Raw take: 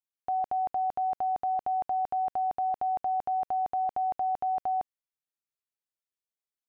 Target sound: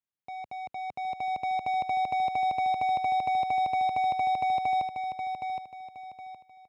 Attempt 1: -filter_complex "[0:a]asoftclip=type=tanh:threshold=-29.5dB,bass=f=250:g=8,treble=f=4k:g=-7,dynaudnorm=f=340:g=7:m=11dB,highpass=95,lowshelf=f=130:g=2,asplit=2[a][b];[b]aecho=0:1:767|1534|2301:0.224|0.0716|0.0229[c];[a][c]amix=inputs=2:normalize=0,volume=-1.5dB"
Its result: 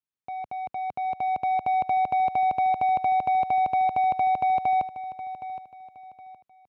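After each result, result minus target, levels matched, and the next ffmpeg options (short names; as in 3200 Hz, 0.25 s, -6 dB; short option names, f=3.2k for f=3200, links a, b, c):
echo-to-direct -7 dB; soft clip: distortion -6 dB
-filter_complex "[0:a]asoftclip=type=tanh:threshold=-29.5dB,bass=f=250:g=8,treble=f=4k:g=-7,dynaudnorm=f=340:g=7:m=11dB,highpass=95,lowshelf=f=130:g=2,asplit=2[a][b];[b]aecho=0:1:767|1534|2301|3068:0.501|0.16|0.0513|0.0164[c];[a][c]amix=inputs=2:normalize=0,volume=-1.5dB"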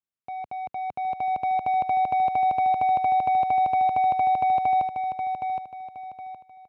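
soft clip: distortion -6 dB
-filter_complex "[0:a]asoftclip=type=tanh:threshold=-36dB,bass=f=250:g=8,treble=f=4k:g=-7,dynaudnorm=f=340:g=7:m=11dB,highpass=95,lowshelf=f=130:g=2,asplit=2[a][b];[b]aecho=0:1:767|1534|2301|3068:0.501|0.16|0.0513|0.0164[c];[a][c]amix=inputs=2:normalize=0,volume=-1.5dB"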